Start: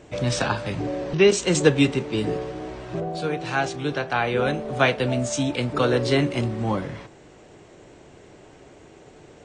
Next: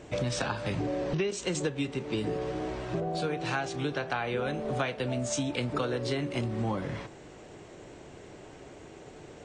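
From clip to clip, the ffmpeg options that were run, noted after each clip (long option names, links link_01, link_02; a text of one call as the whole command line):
ffmpeg -i in.wav -af "acompressor=threshold=-27dB:ratio=12" out.wav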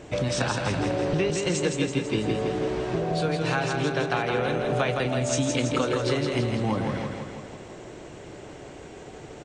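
ffmpeg -i in.wav -af "aecho=1:1:165|330|495|660|825|990|1155|1320:0.596|0.345|0.2|0.116|0.0674|0.0391|0.0227|0.0132,volume=4dB" out.wav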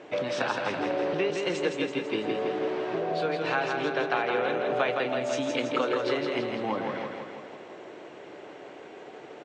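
ffmpeg -i in.wav -af "highpass=330,lowpass=3400" out.wav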